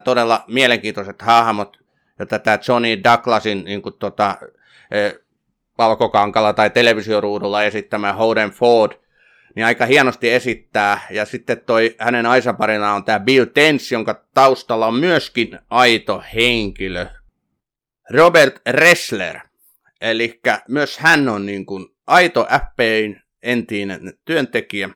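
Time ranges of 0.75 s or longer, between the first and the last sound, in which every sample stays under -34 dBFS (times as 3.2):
17.16–18.09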